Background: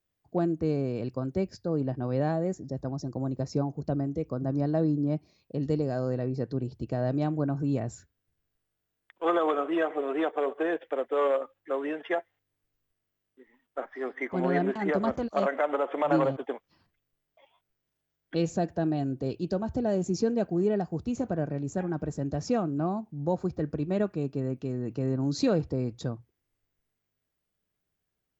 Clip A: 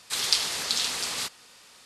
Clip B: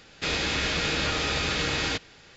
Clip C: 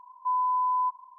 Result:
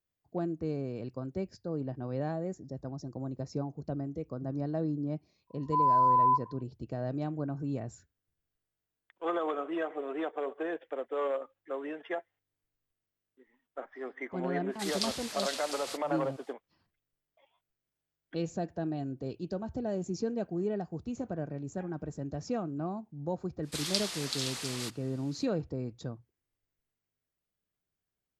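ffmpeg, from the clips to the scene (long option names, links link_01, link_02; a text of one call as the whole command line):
ffmpeg -i bed.wav -i cue0.wav -i cue1.wav -i cue2.wav -filter_complex "[1:a]asplit=2[link_01][link_02];[0:a]volume=-6.5dB[link_03];[3:a]dynaudnorm=framelen=110:gausssize=5:maxgain=14.5dB,atrim=end=1.18,asetpts=PTS-STARTPTS,volume=-12.5dB,afade=type=in:duration=0.05,afade=type=out:start_time=1.13:duration=0.05,adelay=5470[link_04];[link_01]atrim=end=1.85,asetpts=PTS-STARTPTS,volume=-11dB,afade=type=in:duration=0.05,afade=type=out:start_time=1.8:duration=0.05,adelay=14690[link_05];[link_02]atrim=end=1.85,asetpts=PTS-STARTPTS,volume=-8.5dB,afade=type=in:duration=0.05,afade=type=out:start_time=1.8:duration=0.05,adelay=23620[link_06];[link_03][link_04][link_05][link_06]amix=inputs=4:normalize=0" out.wav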